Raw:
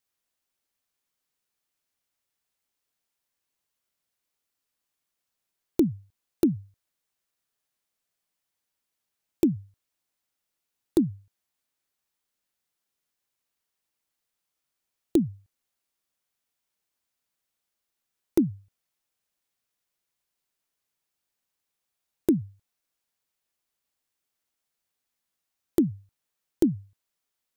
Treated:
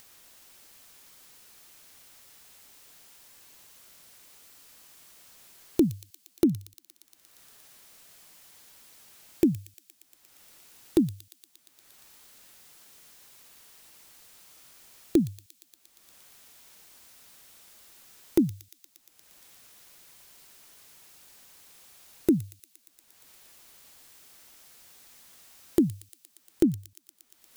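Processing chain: upward compressor, threshold -33 dBFS; thin delay 0.117 s, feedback 81%, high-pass 3400 Hz, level -8 dB

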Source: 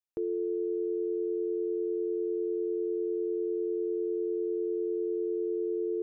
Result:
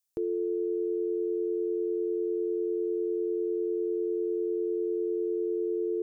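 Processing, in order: tone controls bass +3 dB, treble +13 dB; gain +1 dB

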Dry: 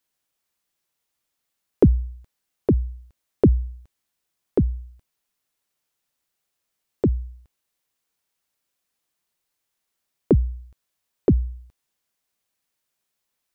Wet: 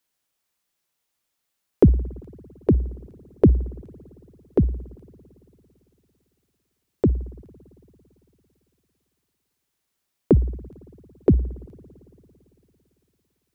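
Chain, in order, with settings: spring tank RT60 3.2 s, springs 56 ms, chirp 65 ms, DRR 19.5 dB; gain +1 dB

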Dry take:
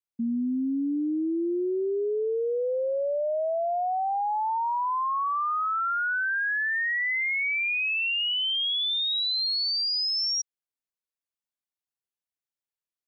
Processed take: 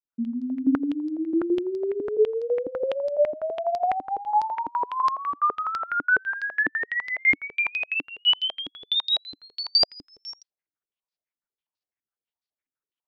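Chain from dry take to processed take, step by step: grains 0.123 s, grains 13/s, spray 39 ms, pitch spread up and down by 0 st; stepped low-pass 12 Hz 290–4700 Hz

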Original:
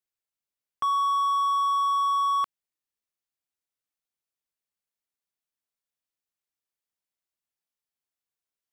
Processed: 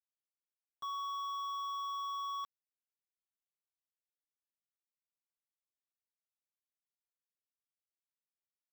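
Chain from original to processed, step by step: overloaded stage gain 35.5 dB; power-law curve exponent 3; comb 7.1 ms, depth 93%; gain -8.5 dB

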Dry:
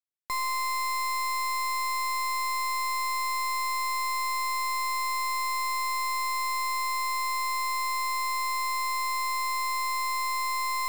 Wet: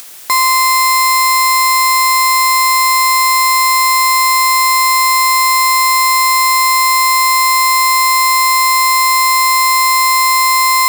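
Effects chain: HPF 320 Hz 6 dB/oct; high shelf 5100 Hz +5.5 dB; upward compressor, threshold -45 dBFS; maximiser +33 dB; gain -1 dB

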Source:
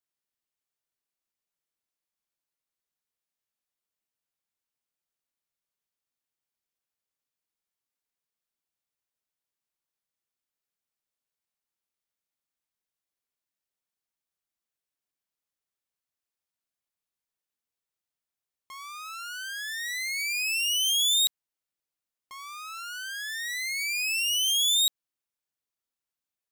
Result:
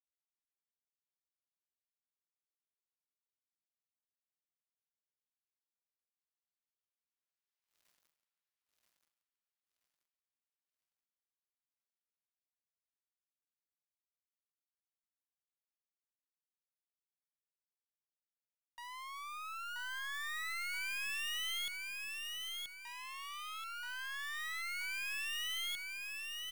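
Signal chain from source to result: median filter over 5 samples; Doppler pass-by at 7.91, 44 m/s, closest 9.7 m; HPF 960 Hz 12 dB/oct; sample leveller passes 5; on a send: feedback echo 0.979 s, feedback 40%, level -3.5 dB; on the sum: gain +13 dB

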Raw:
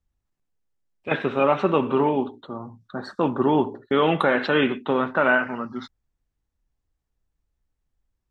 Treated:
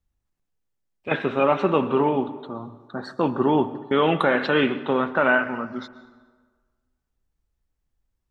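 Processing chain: plate-style reverb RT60 1.5 s, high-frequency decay 0.65×, pre-delay 0.105 s, DRR 16 dB

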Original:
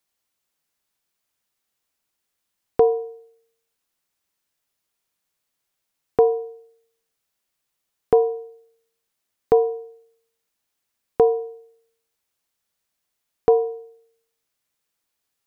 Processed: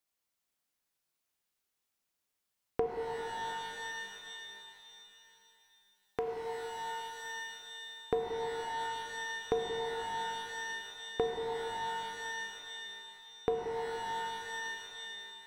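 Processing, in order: compressor 2.5:1, threshold -24 dBFS, peak gain reduction 8.5 dB; 2.86–6.28 tilt shelf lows -5.5 dB, about 1100 Hz; shimmer reverb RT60 3 s, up +12 st, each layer -2 dB, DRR 3 dB; gain -8 dB

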